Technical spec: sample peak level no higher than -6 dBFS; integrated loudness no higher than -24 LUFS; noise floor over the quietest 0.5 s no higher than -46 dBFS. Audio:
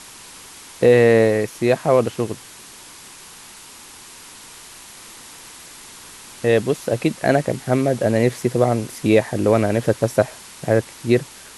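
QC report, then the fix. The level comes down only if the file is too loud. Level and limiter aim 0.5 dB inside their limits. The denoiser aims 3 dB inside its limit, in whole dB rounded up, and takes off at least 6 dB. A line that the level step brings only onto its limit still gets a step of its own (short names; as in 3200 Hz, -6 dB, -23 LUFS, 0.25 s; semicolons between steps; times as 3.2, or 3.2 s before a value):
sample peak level -2.5 dBFS: fail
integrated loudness -19.0 LUFS: fail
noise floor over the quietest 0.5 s -42 dBFS: fail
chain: gain -5.5 dB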